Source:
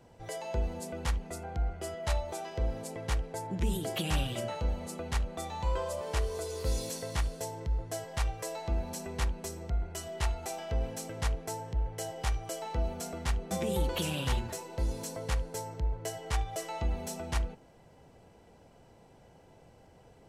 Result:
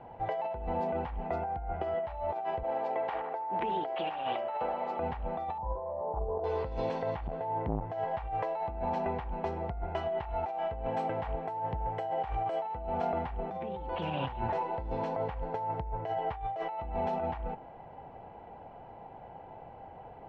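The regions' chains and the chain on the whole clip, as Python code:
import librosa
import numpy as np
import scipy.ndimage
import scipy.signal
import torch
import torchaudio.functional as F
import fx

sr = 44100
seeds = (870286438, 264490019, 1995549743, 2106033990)

y = fx.chain(x, sr, fx.bandpass_edges(low_hz=380.0, high_hz=7400.0),
    fx.echo_banded(ms=76, feedback_pct=73, hz=1100.0, wet_db=-13.0), at=(2.63, 4.99))
y = fx.chain(y, sr, fx.cheby2_lowpass(hz=1900.0, order=4, stop_db=40),
    fx.over_compress(threshold_db=-31.0, ratio=-0.5), at=(5.58, 6.44))
y = fx.chain(y, sr, fx.lowpass(hz=3000.0, slope=12),
    fx.transformer_sat(knee_hz=290.0), at=(7.27, 7.9))
y = fx.chain(y, sr, fx.highpass(hz=71.0, slope=6),
    fx.peak_eq(hz=8400.0, db=15.0, octaves=0.23), at=(10.87, 12.71))
y = scipy.signal.sosfilt(scipy.signal.butter(4, 2800.0, 'lowpass', fs=sr, output='sos'), y)
y = fx.peak_eq(y, sr, hz=810.0, db=14.5, octaves=0.74)
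y = fx.over_compress(y, sr, threshold_db=-34.0, ratio=-1.0)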